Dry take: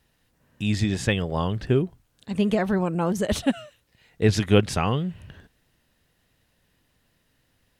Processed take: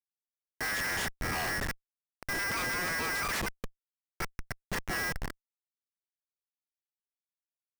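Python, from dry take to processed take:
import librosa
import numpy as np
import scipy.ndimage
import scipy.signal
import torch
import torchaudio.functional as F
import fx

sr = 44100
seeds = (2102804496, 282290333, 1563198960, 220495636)

y = fx.gate_flip(x, sr, shuts_db=-11.0, range_db=-41)
y = y * np.sin(2.0 * np.pi * 1800.0 * np.arange(len(y)) / sr)
y = fx.schmitt(y, sr, flips_db=-38.5)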